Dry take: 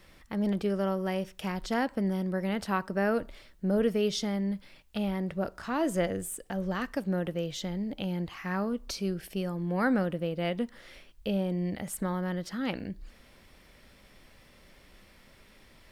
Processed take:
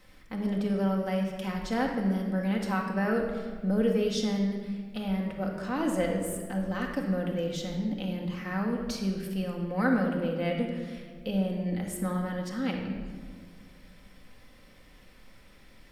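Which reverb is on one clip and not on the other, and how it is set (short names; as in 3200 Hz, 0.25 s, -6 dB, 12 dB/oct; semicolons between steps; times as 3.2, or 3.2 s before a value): shoebox room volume 2000 m³, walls mixed, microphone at 2 m; gain -3 dB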